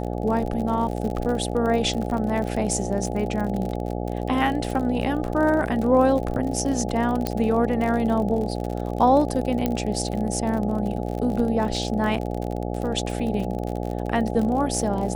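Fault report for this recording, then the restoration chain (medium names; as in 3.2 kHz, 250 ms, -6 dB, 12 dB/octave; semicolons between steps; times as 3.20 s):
buzz 60 Hz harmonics 14 -28 dBFS
crackle 46 per s -28 dBFS
7.27 s: pop -9 dBFS
9.66 s: pop -10 dBFS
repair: de-click; de-hum 60 Hz, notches 14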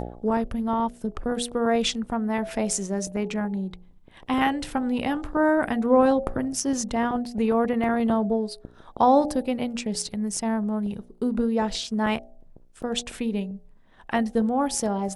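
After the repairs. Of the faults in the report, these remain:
7.27 s: pop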